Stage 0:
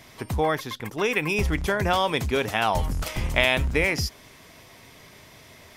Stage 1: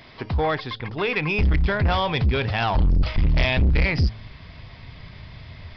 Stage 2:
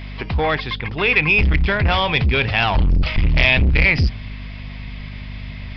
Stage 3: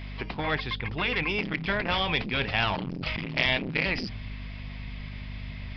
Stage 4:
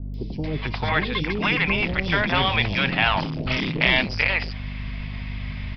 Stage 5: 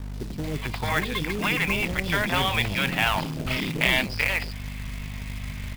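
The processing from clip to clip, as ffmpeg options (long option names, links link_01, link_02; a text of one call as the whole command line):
ffmpeg -i in.wav -af "bandreject=frequency=109.3:width_type=h:width=4,bandreject=frequency=218.6:width_type=h:width=4,bandreject=frequency=327.9:width_type=h:width=4,bandreject=frequency=437.2:width_type=h:width=4,bandreject=frequency=546.5:width_type=h:width=4,bandreject=frequency=655.8:width_type=h:width=4,bandreject=frequency=765.1:width_type=h:width=4,asubboost=boost=9:cutoff=120,aresample=11025,asoftclip=type=tanh:threshold=-18dB,aresample=44100,volume=3dB" out.wav
ffmpeg -i in.wav -af "aeval=exprs='val(0)+0.0224*(sin(2*PI*50*n/s)+sin(2*PI*2*50*n/s)/2+sin(2*PI*3*50*n/s)/3+sin(2*PI*4*50*n/s)/4+sin(2*PI*5*50*n/s)/5)':channel_layout=same,equalizer=frequency=2500:width=1.5:gain=8.5,volume=2.5dB" out.wav
ffmpeg -i in.wav -af "afftfilt=real='re*lt(hypot(re,im),0.708)':imag='im*lt(hypot(re,im),0.708)':win_size=1024:overlap=0.75,volume=-6.5dB" out.wav
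ffmpeg -i in.wav -filter_complex "[0:a]acrossover=split=480|4400[link_01][link_02][link_03];[link_03]adelay=140[link_04];[link_02]adelay=440[link_05];[link_01][link_05][link_04]amix=inputs=3:normalize=0,volume=7dB" out.wav
ffmpeg -i in.wav -af "acrusher=bits=3:mode=log:mix=0:aa=0.000001,volume=-3dB" out.wav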